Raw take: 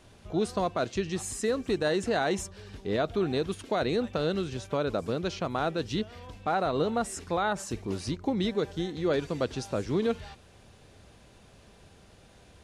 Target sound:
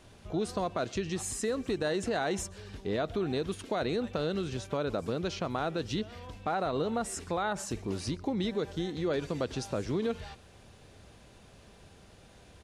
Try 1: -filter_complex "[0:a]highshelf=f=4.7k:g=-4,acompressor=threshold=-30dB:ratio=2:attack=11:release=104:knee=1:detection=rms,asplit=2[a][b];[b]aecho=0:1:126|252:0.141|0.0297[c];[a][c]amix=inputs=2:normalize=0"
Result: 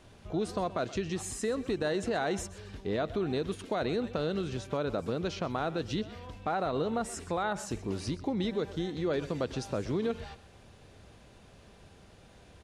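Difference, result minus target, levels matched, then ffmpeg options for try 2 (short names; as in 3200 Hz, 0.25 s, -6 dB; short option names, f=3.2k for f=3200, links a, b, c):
echo-to-direct +8.5 dB; 8000 Hz band -3.0 dB
-filter_complex "[0:a]acompressor=threshold=-30dB:ratio=2:attack=11:release=104:knee=1:detection=rms,asplit=2[a][b];[b]aecho=0:1:126|252:0.0531|0.0111[c];[a][c]amix=inputs=2:normalize=0"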